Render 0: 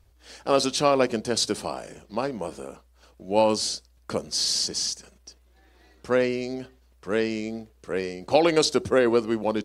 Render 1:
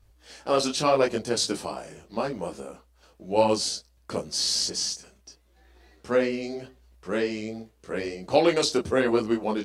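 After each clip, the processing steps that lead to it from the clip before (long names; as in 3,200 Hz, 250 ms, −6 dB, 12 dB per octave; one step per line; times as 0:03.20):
micro pitch shift up and down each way 30 cents
level +2.5 dB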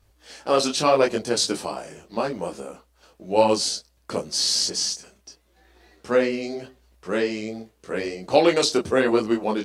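low-shelf EQ 100 Hz −8 dB
level +3.5 dB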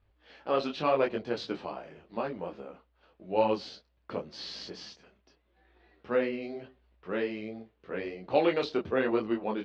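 low-pass filter 3,400 Hz 24 dB per octave
level −8 dB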